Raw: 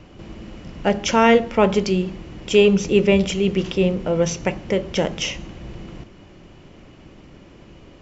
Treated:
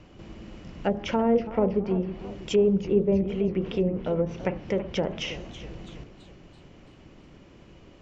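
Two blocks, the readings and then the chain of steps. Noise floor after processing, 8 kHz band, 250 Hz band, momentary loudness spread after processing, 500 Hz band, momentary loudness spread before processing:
−52 dBFS, can't be measured, −6.0 dB, 20 LU, −6.5 dB, 22 LU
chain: treble cut that deepens with the level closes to 600 Hz, closed at −13.5 dBFS
feedback echo with a swinging delay time 328 ms, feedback 48%, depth 174 cents, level −14 dB
level −6 dB

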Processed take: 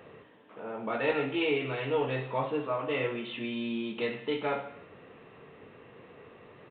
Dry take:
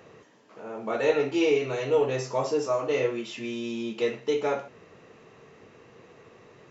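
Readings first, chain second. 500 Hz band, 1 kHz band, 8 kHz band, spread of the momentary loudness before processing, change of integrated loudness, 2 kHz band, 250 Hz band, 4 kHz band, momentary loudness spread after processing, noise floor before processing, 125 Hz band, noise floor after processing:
−6.5 dB, −1.5 dB, can't be measured, 10 LU, −4.5 dB, 0.0 dB, −3.0 dB, −1.0 dB, 11 LU, −55 dBFS, −0.5 dB, −54 dBFS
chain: dynamic equaliser 460 Hz, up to −7 dB, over −37 dBFS, Q 1.1
reverb whose tail is shaped and stops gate 330 ms falling, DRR 9 dB
downsampling to 8,000 Hz

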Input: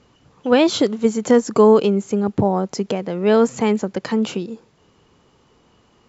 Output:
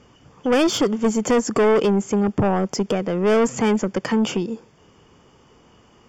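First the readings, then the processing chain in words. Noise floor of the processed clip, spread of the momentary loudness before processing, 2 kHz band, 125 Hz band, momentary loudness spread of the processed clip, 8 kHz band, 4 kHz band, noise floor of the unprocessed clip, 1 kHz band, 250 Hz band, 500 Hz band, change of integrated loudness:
−54 dBFS, 11 LU, +1.5 dB, 0.0 dB, 6 LU, can't be measured, −0.5 dB, −58 dBFS, −1.5 dB, −1.5 dB, −3.0 dB, −2.5 dB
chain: soft clipping −17 dBFS, distortion −7 dB
Butterworth band-reject 4,000 Hz, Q 5.1
level +3.5 dB

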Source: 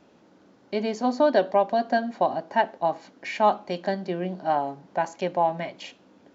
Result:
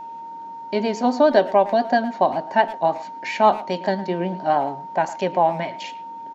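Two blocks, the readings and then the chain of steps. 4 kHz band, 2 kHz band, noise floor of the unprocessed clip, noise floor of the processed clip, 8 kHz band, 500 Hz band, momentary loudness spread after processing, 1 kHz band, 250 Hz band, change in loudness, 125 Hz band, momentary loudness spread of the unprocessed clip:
+4.5 dB, +4.5 dB, −58 dBFS, −35 dBFS, can't be measured, +4.5 dB, 16 LU, +5.0 dB, +4.5 dB, +4.5 dB, +4.5 dB, 12 LU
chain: pitch vibrato 7.3 Hz 46 cents
far-end echo of a speakerphone 110 ms, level −16 dB
steady tone 920 Hz −37 dBFS
level +4.5 dB

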